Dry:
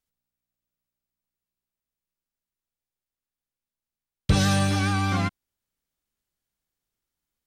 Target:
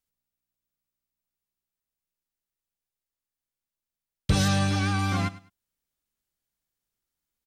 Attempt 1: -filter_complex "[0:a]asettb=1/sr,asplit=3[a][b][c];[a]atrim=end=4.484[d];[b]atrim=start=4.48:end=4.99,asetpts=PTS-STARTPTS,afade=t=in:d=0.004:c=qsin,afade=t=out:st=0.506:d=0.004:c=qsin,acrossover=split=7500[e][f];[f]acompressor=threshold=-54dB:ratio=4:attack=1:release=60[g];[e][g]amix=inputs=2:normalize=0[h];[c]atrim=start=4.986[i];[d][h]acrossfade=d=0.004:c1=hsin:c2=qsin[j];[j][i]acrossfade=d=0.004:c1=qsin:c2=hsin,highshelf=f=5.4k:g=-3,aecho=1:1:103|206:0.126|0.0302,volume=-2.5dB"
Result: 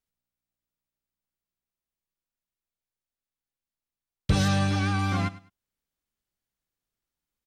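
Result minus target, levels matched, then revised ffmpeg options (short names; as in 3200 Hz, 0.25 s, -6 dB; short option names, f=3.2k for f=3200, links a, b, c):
8000 Hz band -3.5 dB
-filter_complex "[0:a]asettb=1/sr,asplit=3[a][b][c];[a]atrim=end=4.484[d];[b]atrim=start=4.48:end=4.99,asetpts=PTS-STARTPTS,afade=t=in:d=0.004:c=qsin,afade=t=out:st=0.506:d=0.004:c=qsin,acrossover=split=7500[e][f];[f]acompressor=threshold=-54dB:ratio=4:attack=1:release=60[g];[e][g]amix=inputs=2:normalize=0[h];[c]atrim=start=4.986[i];[d][h]acrossfade=d=0.004:c1=hsin:c2=qsin[j];[j][i]acrossfade=d=0.004:c1=qsin:c2=hsin,highshelf=f=5.4k:g=3.5,aecho=1:1:103|206:0.126|0.0302,volume=-2.5dB"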